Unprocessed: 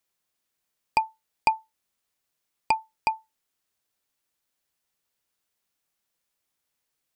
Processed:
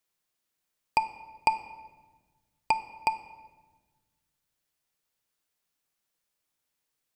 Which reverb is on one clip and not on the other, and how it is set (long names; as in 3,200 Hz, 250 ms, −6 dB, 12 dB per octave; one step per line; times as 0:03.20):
rectangular room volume 1,100 cubic metres, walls mixed, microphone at 0.5 metres
level −2 dB